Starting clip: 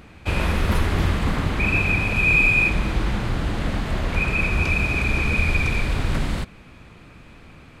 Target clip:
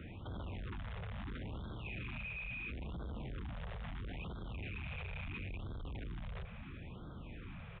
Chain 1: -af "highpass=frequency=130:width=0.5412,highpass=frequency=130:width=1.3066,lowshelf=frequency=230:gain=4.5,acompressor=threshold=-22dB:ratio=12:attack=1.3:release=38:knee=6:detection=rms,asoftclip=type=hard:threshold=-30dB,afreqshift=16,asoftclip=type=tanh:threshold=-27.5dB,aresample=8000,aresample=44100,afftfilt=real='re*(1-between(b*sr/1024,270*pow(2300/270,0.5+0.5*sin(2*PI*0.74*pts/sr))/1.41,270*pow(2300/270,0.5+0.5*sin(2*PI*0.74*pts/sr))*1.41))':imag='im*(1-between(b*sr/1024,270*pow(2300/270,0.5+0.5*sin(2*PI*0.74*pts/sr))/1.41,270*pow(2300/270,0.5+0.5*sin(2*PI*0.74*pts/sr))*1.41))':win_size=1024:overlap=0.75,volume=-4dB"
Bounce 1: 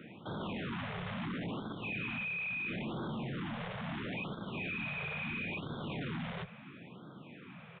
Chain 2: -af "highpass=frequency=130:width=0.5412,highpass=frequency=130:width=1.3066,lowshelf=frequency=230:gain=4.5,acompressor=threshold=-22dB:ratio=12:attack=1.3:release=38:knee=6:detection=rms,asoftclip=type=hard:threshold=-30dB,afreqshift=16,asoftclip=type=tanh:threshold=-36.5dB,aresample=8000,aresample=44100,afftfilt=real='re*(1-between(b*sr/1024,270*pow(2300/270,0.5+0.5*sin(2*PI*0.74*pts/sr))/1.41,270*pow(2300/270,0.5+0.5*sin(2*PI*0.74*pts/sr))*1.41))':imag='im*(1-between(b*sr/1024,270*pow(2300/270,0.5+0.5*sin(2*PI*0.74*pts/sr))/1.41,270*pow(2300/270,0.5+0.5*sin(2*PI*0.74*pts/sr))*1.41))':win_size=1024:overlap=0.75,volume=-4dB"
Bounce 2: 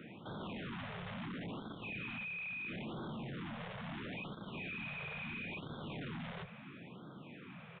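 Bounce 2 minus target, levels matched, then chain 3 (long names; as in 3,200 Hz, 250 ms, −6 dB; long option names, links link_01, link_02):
125 Hz band −4.5 dB
-af "lowshelf=frequency=230:gain=4.5,acompressor=threshold=-22dB:ratio=12:attack=1.3:release=38:knee=6:detection=rms,asoftclip=type=hard:threshold=-30dB,afreqshift=16,asoftclip=type=tanh:threshold=-36.5dB,aresample=8000,aresample=44100,afftfilt=real='re*(1-between(b*sr/1024,270*pow(2300/270,0.5+0.5*sin(2*PI*0.74*pts/sr))/1.41,270*pow(2300/270,0.5+0.5*sin(2*PI*0.74*pts/sr))*1.41))':imag='im*(1-between(b*sr/1024,270*pow(2300/270,0.5+0.5*sin(2*PI*0.74*pts/sr))/1.41,270*pow(2300/270,0.5+0.5*sin(2*PI*0.74*pts/sr))*1.41))':win_size=1024:overlap=0.75,volume=-4dB"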